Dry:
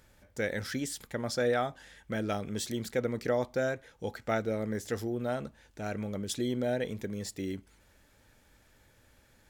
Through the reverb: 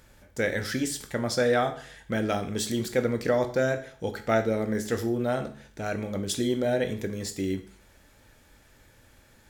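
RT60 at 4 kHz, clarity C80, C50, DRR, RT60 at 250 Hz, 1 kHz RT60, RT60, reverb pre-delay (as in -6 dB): 0.50 s, 16.5 dB, 12.5 dB, 7.0 dB, 0.50 s, 0.50 s, 0.50 s, 14 ms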